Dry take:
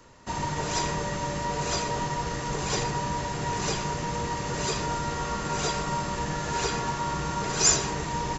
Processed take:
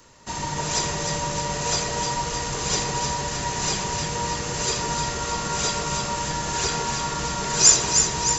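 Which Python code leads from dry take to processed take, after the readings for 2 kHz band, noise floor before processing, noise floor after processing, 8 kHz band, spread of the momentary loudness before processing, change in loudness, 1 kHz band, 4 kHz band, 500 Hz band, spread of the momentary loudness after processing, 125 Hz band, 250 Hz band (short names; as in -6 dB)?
+3.0 dB, -33 dBFS, -30 dBFS, n/a, 5 LU, +5.5 dB, +2.0 dB, +7.0 dB, +1.5 dB, 9 LU, +1.0 dB, +0.5 dB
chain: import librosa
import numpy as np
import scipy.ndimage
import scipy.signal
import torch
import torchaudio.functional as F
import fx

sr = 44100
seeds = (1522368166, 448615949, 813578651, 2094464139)

y = fx.high_shelf(x, sr, hz=3200.0, db=10.0)
y = fx.echo_alternate(y, sr, ms=154, hz=1100.0, feedback_pct=79, wet_db=-3.5)
y = F.gain(torch.from_numpy(y), -1.0).numpy()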